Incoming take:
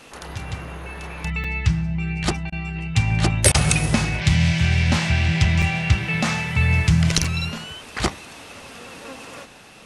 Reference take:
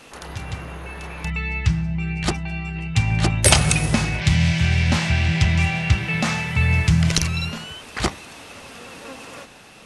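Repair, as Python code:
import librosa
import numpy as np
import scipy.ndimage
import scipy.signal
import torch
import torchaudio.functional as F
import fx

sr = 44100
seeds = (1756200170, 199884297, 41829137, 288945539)

y = fx.fix_interpolate(x, sr, at_s=(1.44, 5.62, 7.24), length_ms=4.0)
y = fx.fix_interpolate(y, sr, at_s=(2.5, 3.52), length_ms=22.0)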